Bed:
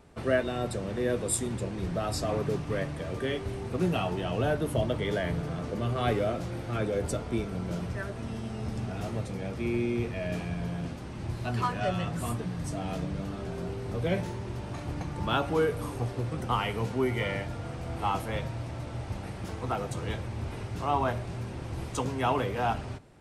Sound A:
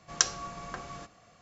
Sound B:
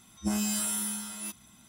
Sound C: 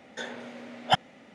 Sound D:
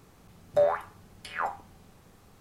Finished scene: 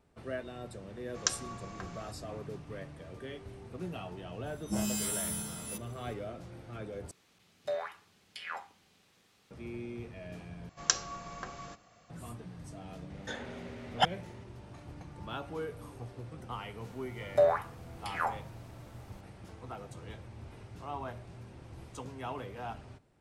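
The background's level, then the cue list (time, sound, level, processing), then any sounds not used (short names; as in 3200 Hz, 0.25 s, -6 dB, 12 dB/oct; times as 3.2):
bed -12.5 dB
1.06 add A -5.5 dB
4.46 add B -4 dB
7.11 replace with D -11.5 dB + weighting filter D
10.69 replace with A -2.5 dB
13.1 add C -4 dB
16.81 add D -1.5 dB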